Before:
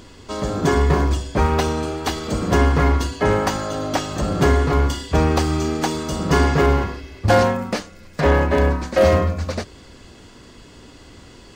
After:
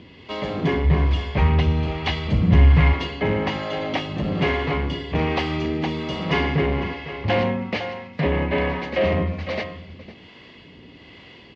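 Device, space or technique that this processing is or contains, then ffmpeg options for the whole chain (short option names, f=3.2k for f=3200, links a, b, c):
guitar amplifier with harmonic tremolo: -filter_complex "[0:a]aecho=1:1:504:0.188,acrossover=split=430[a][b];[a]aeval=exprs='val(0)*(1-0.5/2+0.5/2*cos(2*PI*1.2*n/s))':c=same[c];[b]aeval=exprs='val(0)*(1-0.5/2-0.5/2*cos(2*PI*1.2*n/s))':c=same[d];[c][d]amix=inputs=2:normalize=0,asoftclip=type=tanh:threshold=-14.5dB,highpass=84,equalizer=f=170:t=q:w=4:g=5,equalizer=f=1.4k:t=q:w=4:g=-8,equalizer=f=2.1k:t=q:w=4:g=9,equalizer=f=2.9k:t=q:w=4:g=7,lowpass=f=4.1k:w=0.5412,lowpass=f=4.1k:w=1.3066,asplit=3[e][f][g];[e]afade=t=out:st=0.84:d=0.02[h];[f]asubboost=boost=9:cutoff=130,afade=t=in:st=0.84:d=0.02,afade=t=out:st=2.92:d=0.02[i];[g]afade=t=in:st=2.92:d=0.02[j];[h][i][j]amix=inputs=3:normalize=0"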